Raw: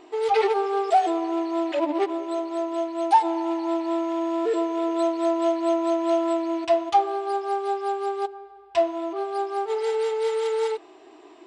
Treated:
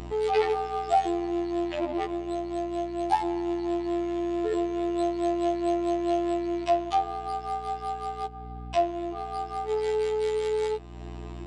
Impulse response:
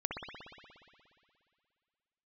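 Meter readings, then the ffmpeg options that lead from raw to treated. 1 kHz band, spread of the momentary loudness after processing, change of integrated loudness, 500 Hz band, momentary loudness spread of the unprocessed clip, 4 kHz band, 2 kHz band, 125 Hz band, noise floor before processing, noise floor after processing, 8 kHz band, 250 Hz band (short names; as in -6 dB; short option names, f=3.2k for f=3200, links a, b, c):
-4.5 dB, 8 LU, -4.0 dB, -4.0 dB, 7 LU, -3.0 dB, -3.5 dB, n/a, -49 dBFS, -39 dBFS, -3.0 dB, -2.5 dB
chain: -af "afftfilt=real='hypot(re,im)*cos(PI*b)':imag='0':win_size=2048:overlap=0.75,aeval=exprs='val(0)+0.00562*(sin(2*PI*60*n/s)+sin(2*PI*2*60*n/s)/2+sin(2*PI*3*60*n/s)/3+sin(2*PI*4*60*n/s)/4+sin(2*PI*5*60*n/s)/5)':c=same,acompressor=mode=upward:threshold=-29dB:ratio=2.5"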